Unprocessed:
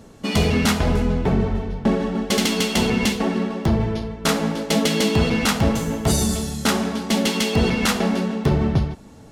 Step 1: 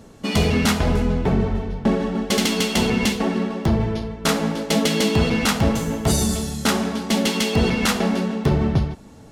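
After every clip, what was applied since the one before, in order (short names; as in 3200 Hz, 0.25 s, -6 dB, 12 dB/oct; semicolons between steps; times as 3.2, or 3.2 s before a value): nothing audible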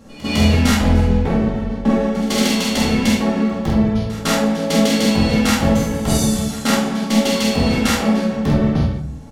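doubler 47 ms -3 dB; pre-echo 0.155 s -18 dB; shoebox room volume 340 m³, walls furnished, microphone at 2.2 m; gain -3 dB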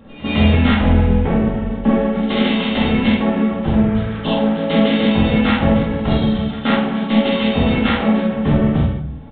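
nonlinear frequency compression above 2600 Hz 1.5:1; downsampling 8000 Hz; spectral repair 3.66–4.59, 1100–2600 Hz after; gain +1 dB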